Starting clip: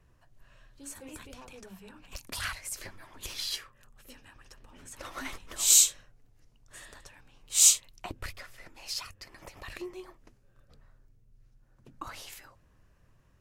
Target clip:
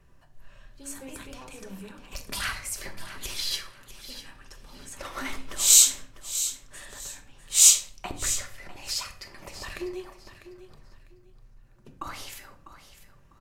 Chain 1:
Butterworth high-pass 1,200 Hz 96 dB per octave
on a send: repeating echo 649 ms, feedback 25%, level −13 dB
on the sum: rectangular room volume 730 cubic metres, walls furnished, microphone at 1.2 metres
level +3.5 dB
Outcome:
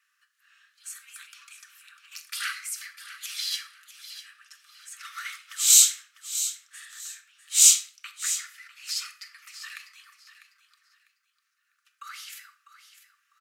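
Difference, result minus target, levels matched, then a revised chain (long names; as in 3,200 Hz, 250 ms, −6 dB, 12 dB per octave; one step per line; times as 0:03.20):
1,000 Hz band −6.0 dB
on a send: repeating echo 649 ms, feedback 25%, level −13 dB
on the sum: rectangular room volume 730 cubic metres, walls furnished, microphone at 1.2 metres
level +3.5 dB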